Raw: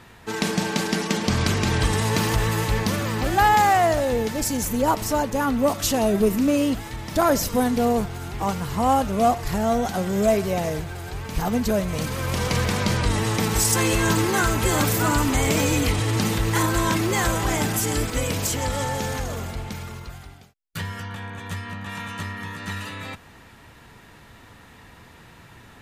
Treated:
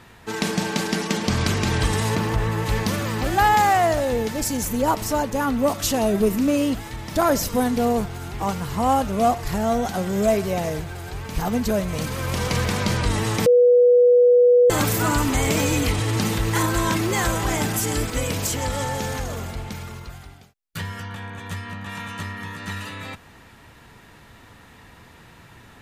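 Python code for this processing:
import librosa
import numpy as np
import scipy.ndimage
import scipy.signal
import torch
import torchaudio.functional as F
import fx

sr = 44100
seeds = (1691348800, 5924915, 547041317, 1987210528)

y = fx.high_shelf(x, sr, hz=3000.0, db=-11.5, at=(2.14, 2.65), fade=0.02)
y = fx.edit(y, sr, fx.bleep(start_s=13.46, length_s=1.24, hz=489.0, db=-10.5), tone=tone)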